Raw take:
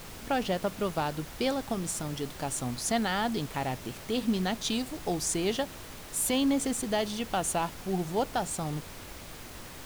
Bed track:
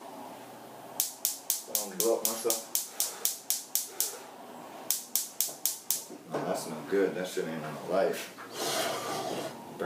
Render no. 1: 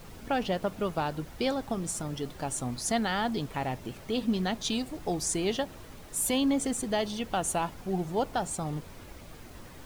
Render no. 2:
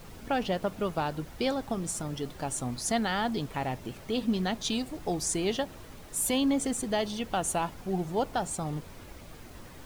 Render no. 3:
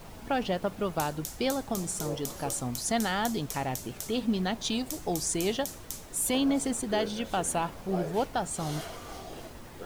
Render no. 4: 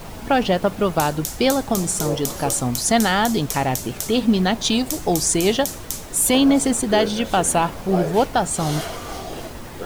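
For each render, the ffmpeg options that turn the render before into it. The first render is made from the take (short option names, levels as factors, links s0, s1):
-af "afftdn=nr=8:nf=-45"
-af anull
-filter_complex "[1:a]volume=0.335[s0];[0:a][s0]amix=inputs=2:normalize=0"
-af "volume=3.55,alimiter=limit=0.708:level=0:latency=1"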